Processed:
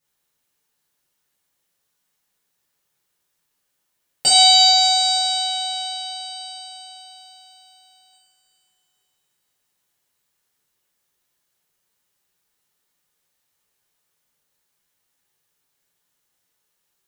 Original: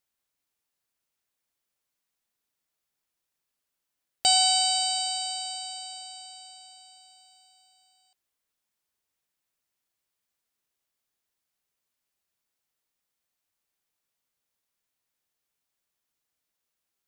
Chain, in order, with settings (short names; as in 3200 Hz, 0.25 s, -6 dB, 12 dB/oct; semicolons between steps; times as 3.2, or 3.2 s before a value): two-slope reverb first 0.47 s, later 3.5 s, from -15 dB, DRR -9.5 dB